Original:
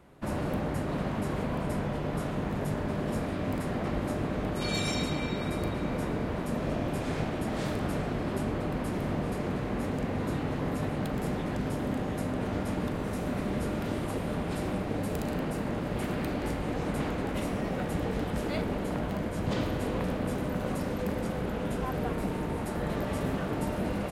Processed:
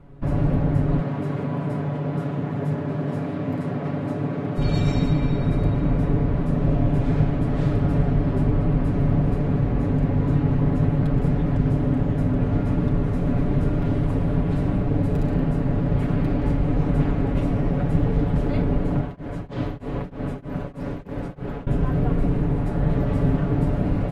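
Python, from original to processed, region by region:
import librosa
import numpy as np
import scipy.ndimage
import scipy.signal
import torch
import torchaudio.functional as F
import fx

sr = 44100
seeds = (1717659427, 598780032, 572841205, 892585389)

y = fx.chain(x, sr, fx.highpass(hz=110.0, slope=24),
    fx.low_shelf(hz=190.0, db=-7.5), at=(1.0, 4.58))
y = fx.chain(y, sr, fx.low_shelf(hz=250.0, db=-9.0),
    fx.tremolo_abs(hz=3.2), at=(19.01, 21.67))
y = fx.riaa(y, sr, side='playback')
y = y + 0.75 * np.pad(y, (int(7.1 * sr / 1000.0), 0))[:len(y)]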